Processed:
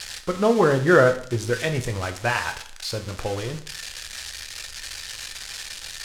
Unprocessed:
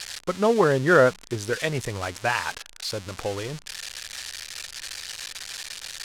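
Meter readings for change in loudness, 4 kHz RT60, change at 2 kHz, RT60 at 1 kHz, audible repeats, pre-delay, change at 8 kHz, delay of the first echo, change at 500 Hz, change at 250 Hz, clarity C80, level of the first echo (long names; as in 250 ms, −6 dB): +1.5 dB, 0.55 s, +1.0 dB, 0.60 s, no echo audible, 4 ms, +1.0 dB, no echo audible, +1.5 dB, +3.0 dB, 15.0 dB, no echo audible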